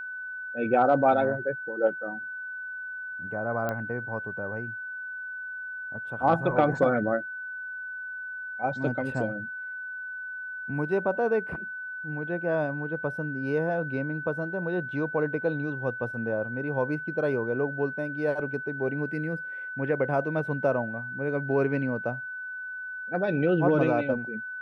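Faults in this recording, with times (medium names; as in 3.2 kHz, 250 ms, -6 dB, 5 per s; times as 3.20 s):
whine 1.5 kHz -34 dBFS
3.69 s: pop -17 dBFS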